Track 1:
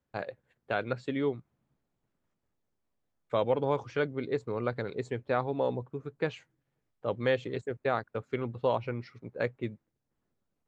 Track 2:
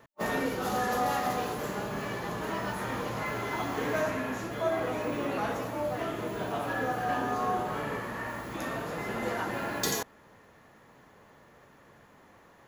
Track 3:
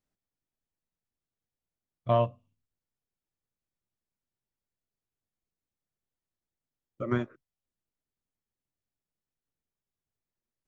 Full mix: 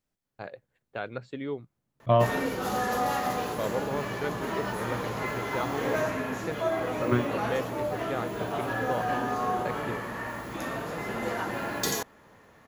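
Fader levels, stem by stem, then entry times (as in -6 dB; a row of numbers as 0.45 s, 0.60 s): -4.0 dB, +1.0 dB, +3.0 dB; 0.25 s, 2.00 s, 0.00 s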